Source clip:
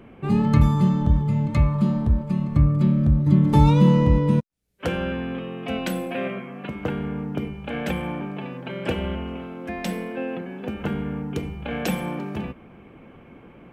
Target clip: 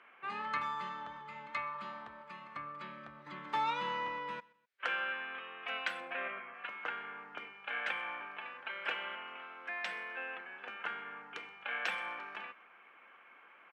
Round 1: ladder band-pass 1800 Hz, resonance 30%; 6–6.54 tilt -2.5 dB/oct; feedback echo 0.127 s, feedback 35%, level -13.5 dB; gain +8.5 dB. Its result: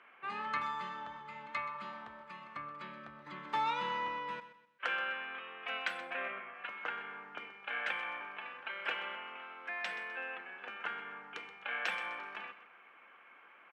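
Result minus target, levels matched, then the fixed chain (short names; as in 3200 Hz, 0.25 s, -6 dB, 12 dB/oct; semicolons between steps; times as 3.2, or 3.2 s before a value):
echo-to-direct +10 dB
ladder band-pass 1800 Hz, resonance 30%; 6–6.54 tilt -2.5 dB/oct; feedback echo 0.127 s, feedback 35%, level -23.5 dB; gain +8.5 dB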